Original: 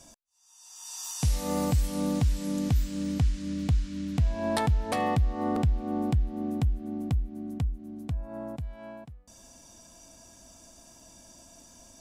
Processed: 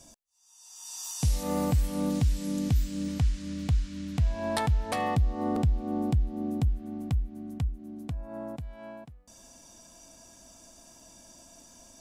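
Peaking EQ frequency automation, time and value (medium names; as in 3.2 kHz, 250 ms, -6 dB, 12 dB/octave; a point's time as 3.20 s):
peaking EQ -4 dB 1.9 oct
1.5 kHz
from 1.43 s 5.8 kHz
from 2.10 s 930 Hz
from 3.08 s 300 Hz
from 5.15 s 1.7 kHz
from 6.68 s 380 Hz
from 7.68 s 72 Hz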